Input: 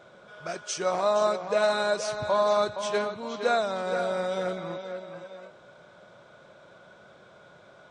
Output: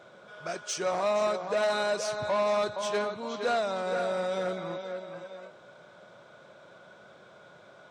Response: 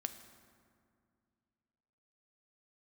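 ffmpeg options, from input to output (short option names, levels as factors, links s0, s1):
-af "asoftclip=type=tanh:threshold=0.0841,highpass=f=110:p=1"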